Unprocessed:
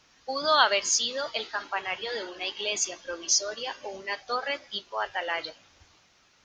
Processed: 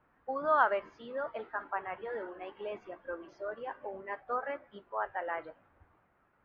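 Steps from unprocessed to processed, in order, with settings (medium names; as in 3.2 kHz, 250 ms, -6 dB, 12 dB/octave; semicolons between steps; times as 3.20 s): low-pass 1.6 kHz 24 dB/octave; trim -3.5 dB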